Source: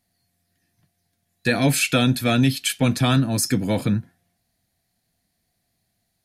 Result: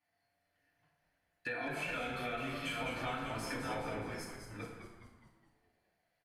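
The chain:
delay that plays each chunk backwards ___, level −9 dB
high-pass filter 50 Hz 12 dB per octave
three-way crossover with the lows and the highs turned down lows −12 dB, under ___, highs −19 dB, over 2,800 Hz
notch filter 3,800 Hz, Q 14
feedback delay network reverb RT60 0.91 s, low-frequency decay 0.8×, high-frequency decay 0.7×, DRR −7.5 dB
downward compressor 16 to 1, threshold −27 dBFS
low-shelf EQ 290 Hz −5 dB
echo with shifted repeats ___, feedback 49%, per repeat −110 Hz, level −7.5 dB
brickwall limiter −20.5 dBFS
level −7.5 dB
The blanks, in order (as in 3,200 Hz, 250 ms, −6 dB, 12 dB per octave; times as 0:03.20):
424 ms, 580 Hz, 208 ms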